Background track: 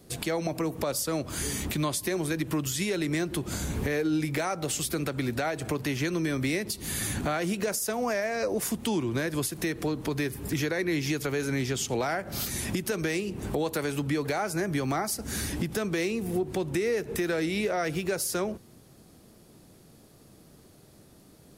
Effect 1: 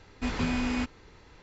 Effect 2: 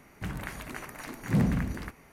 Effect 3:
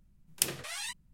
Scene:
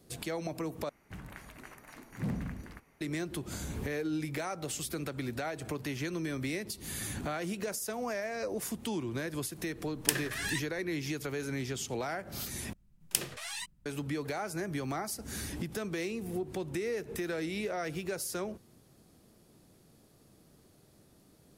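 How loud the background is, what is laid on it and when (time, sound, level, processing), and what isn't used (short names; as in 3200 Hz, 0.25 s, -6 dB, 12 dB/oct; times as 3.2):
background track -7 dB
0.89 replace with 2 -10 dB
9.67 add 3 -0.5 dB + bell 1700 Hz +14.5 dB 0.3 oct
12.73 replace with 3 -1.5 dB
not used: 1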